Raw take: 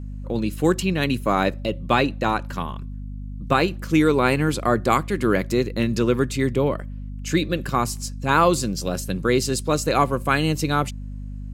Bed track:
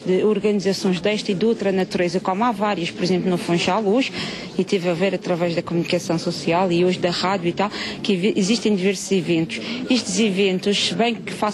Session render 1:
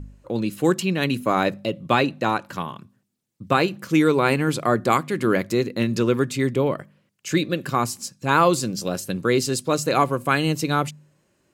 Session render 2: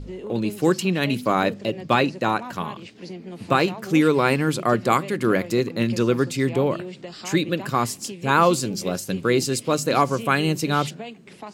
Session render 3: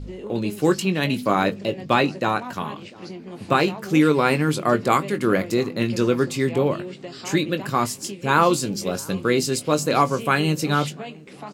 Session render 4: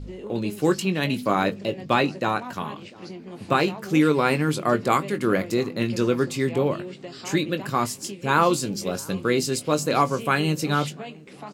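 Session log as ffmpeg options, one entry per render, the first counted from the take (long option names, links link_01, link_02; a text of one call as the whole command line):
ffmpeg -i in.wav -af "bandreject=frequency=50:width_type=h:width=4,bandreject=frequency=100:width_type=h:width=4,bandreject=frequency=150:width_type=h:width=4,bandreject=frequency=200:width_type=h:width=4,bandreject=frequency=250:width_type=h:width=4" out.wav
ffmpeg -i in.wav -i bed.wav -filter_complex "[1:a]volume=-17dB[link_01];[0:a][link_01]amix=inputs=2:normalize=0" out.wav
ffmpeg -i in.wav -filter_complex "[0:a]asplit=2[link_01][link_02];[link_02]adelay=20,volume=-9.5dB[link_03];[link_01][link_03]amix=inputs=2:normalize=0,asplit=2[link_04][link_05];[link_05]adelay=696,lowpass=frequency=1100:poles=1,volume=-23dB,asplit=2[link_06][link_07];[link_07]adelay=696,lowpass=frequency=1100:poles=1,volume=0.41,asplit=2[link_08][link_09];[link_09]adelay=696,lowpass=frequency=1100:poles=1,volume=0.41[link_10];[link_04][link_06][link_08][link_10]amix=inputs=4:normalize=0" out.wav
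ffmpeg -i in.wav -af "volume=-2dB" out.wav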